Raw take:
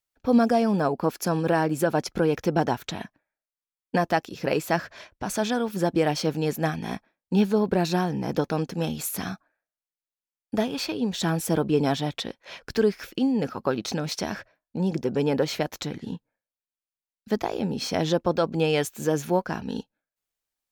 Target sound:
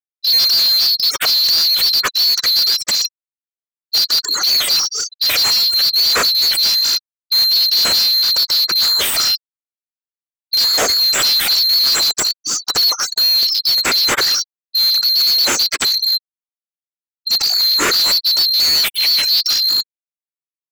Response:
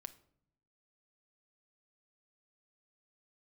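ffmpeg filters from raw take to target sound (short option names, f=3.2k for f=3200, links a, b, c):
-filter_complex "[0:a]afftfilt=real='real(if(lt(b,736),b+184*(1-2*mod(floor(b/184),2)),b),0)':imag='imag(if(lt(b,736),b+184*(1-2*mod(floor(b/184),2)),b),0)':win_size=2048:overlap=0.75,afftfilt=real='re*gte(hypot(re,im),0.00891)':imag='im*gte(hypot(re,im),0.00891)':win_size=1024:overlap=0.75,asplit=2[a][b];[b]highpass=f=720:p=1,volume=35dB,asoftclip=type=tanh:threshold=-7.5dB[c];[a][c]amix=inputs=2:normalize=0,lowpass=f=6.6k:p=1,volume=-6dB,volume=1dB"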